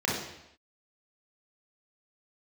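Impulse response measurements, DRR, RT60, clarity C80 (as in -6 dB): -4.5 dB, not exponential, 5.5 dB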